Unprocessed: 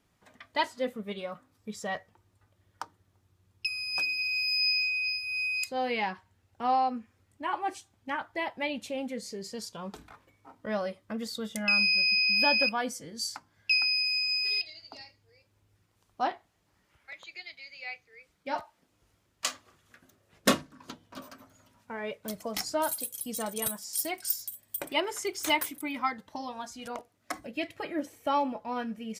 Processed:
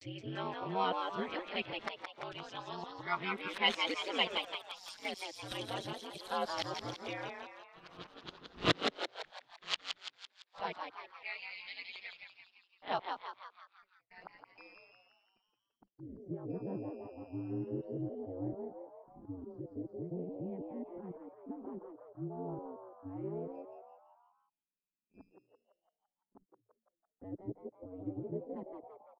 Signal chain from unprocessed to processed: reverse the whole clip; ring modulator 92 Hz; low-pass sweep 3.5 kHz -> 280 Hz, 13.66–15.45 s; gate -58 dBFS, range -36 dB; on a send: frequency-shifting echo 169 ms, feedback 51%, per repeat +110 Hz, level -5 dB; on the sum: trim -4 dB

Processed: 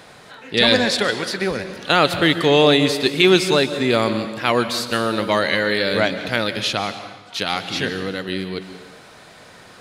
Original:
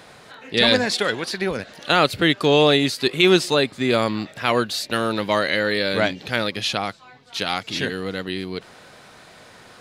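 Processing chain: plate-style reverb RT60 1.1 s, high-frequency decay 0.95×, pre-delay 115 ms, DRR 10 dB; trim +1.5 dB

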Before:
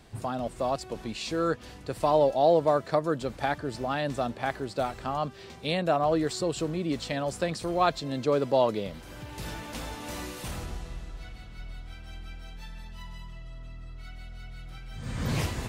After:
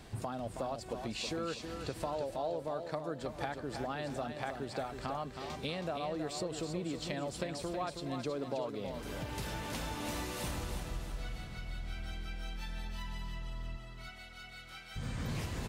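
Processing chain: 13.76–14.95 s: high-pass 400 Hz -> 1.1 kHz 6 dB/octave; compression 6:1, threshold -38 dBFS, peak gain reduction 19 dB; feedback delay 321 ms, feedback 43%, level -7 dB; trim +2 dB

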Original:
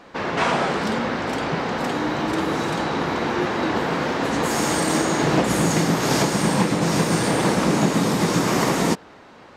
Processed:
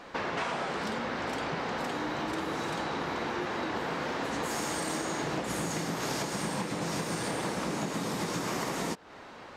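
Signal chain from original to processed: peaking EQ 170 Hz -4 dB 2.8 oct; compression 5:1, threshold -31 dBFS, peak gain reduction 13.5 dB

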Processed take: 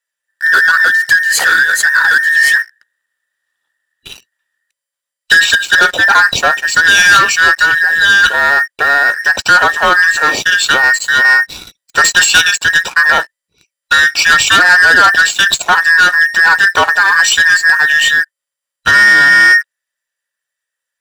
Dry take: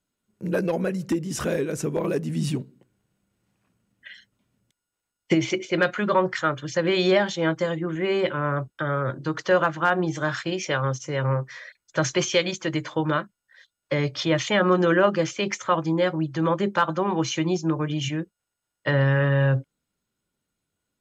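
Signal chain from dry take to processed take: every band turned upside down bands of 2 kHz; tilt shelf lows -7.5 dB, about 780 Hz; waveshaping leveller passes 3; trim +1.5 dB

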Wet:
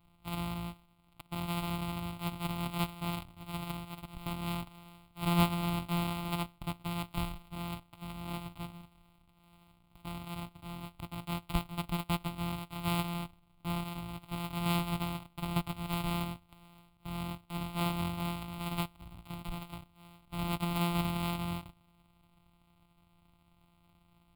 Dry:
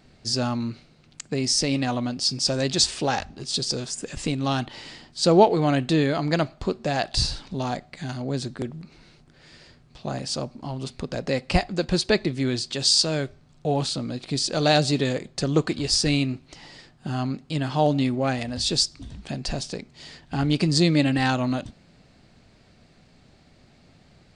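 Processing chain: sorted samples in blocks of 256 samples; static phaser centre 1.7 kHz, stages 6; trim -9 dB

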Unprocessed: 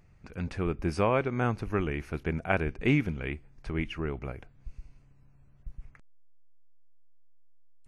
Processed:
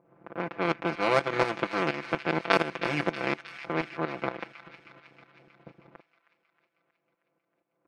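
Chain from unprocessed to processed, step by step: spectral levelling over time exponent 0.4; band-stop 3.1 kHz; power-law waveshaper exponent 2; Bessel high-pass 230 Hz, order 2; level-controlled noise filter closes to 870 Hz, open at -26.5 dBFS; tremolo saw up 4.2 Hz, depth 80%; comb 5.9 ms, depth 93%; on a send: feedback echo behind a high-pass 316 ms, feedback 62%, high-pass 1.8 kHz, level -9.5 dB; on the sum: trim +7 dB

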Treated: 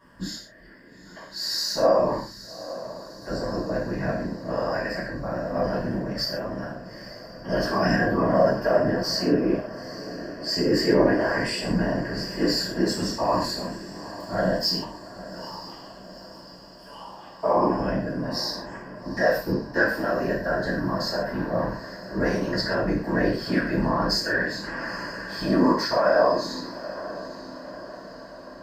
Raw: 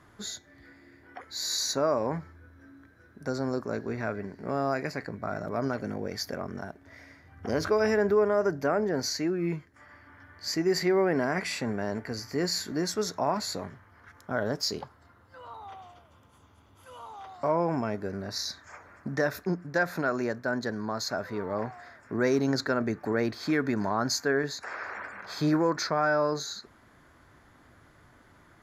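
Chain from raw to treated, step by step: rippled EQ curve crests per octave 1.3, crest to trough 15 dB; whisper effect; on a send: echo that smears into a reverb 876 ms, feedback 57%, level -14.5 dB; on the sum: gated-style reverb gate 170 ms falling, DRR -6.5 dB; trim -6 dB

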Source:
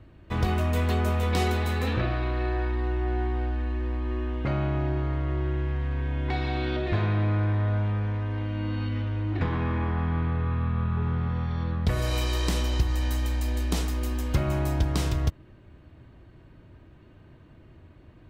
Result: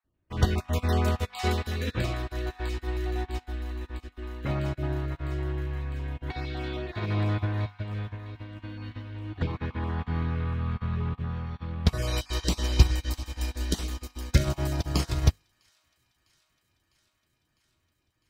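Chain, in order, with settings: random holes in the spectrogram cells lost 20%; on a send: feedback echo behind a high-pass 653 ms, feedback 79%, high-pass 1.5 kHz, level -8 dB; on the sum: dynamic bell 5.3 kHz, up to +5 dB, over -52 dBFS, Q 1.4; de-hum 50.08 Hz, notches 24; upward expansion 2.5:1, over -41 dBFS; trim +8.5 dB

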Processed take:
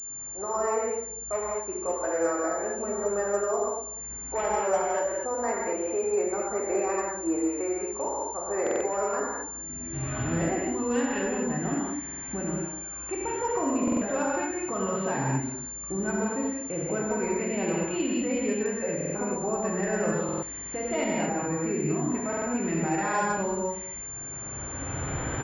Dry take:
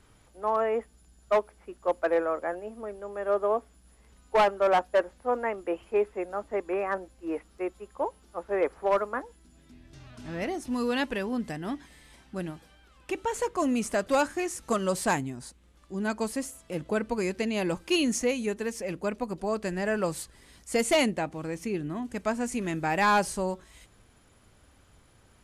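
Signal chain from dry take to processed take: recorder AGC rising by 17 dB/s; high-pass 110 Hz 6 dB/octave; peak limiter -23.5 dBFS, peak gain reduction 8.5 dB; distance through air 310 m; echo from a far wall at 34 m, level -17 dB; gated-style reverb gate 270 ms flat, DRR -5 dB; buffer glitch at 8.62/12.04/13.83/18.96/20.24/22.28 s, samples 2048, times 3; class-D stage that switches slowly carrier 7.2 kHz

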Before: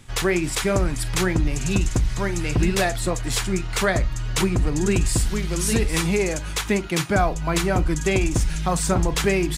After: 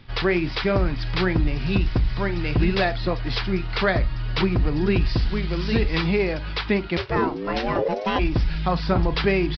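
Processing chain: resampled via 11.025 kHz; 6.96–8.18 s: ring modulator 230 Hz -> 650 Hz

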